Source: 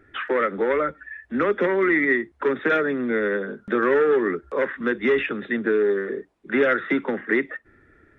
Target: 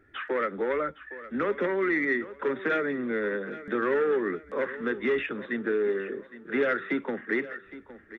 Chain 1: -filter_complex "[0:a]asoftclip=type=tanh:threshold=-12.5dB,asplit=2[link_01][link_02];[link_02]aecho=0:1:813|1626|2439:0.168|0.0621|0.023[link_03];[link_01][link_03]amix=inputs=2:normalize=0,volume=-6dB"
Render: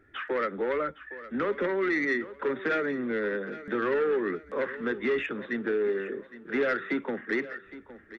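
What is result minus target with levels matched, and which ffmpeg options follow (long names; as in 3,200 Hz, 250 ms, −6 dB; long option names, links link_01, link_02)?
soft clipping: distortion +12 dB
-filter_complex "[0:a]asoftclip=type=tanh:threshold=-5.5dB,asplit=2[link_01][link_02];[link_02]aecho=0:1:813|1626|2439:0.168|0.0621|0.023[link_03];[link_01][link_03]amix=inputs=2:normalize=0,volume=-6dB"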